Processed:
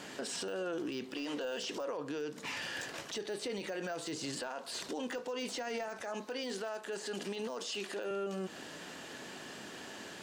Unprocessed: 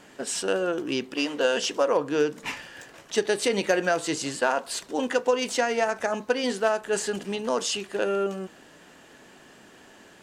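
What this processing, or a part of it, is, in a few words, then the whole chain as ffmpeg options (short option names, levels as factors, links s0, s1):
broadcast voice chain: -filter_complex "[0:a]asettb=1/sr,asplit=3[s0][s1][s2];[s0]atrim=end=6.024[s3];[s1]atrim=start=6.02:end=8.11,asetpts=PTS-STARTPTS,afade=t=in:d=0.004:c=qsin,afade=t=out:st=2.086:d=0.004:c=qsin,highpass=220[s4];[s2]atrim=start=8.106[s5];[s3][s4]acrossfade=d=0.004:c1=hsin:c2=qsin[s6];[s6][s5]acrossfade=d=0.004:c1=qsin:c2=hsin,highpass=83,deesser=0.85,acompressor=threshold=0.0158:ratio=4,equalizer=f=4400:t=o:w=1.1:g=5,alimiter=level_in=3.16:limit=0.0631:level=0:latency=1:release=26,volume=0.316,volume=1.5"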